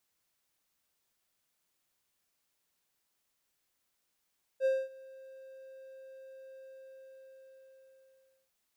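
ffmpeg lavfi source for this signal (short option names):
-f lavfi -i "aevalsrc='0.0794*(1-4*abs(mod(530*t+0.25,1)-0.5))':d=3.9:s=44100,afade=t=in:d=0.053,afade=t=out:st=0.053:d=0.23:silence=0.0631,afade=t=out:st=1.97:d=1.93"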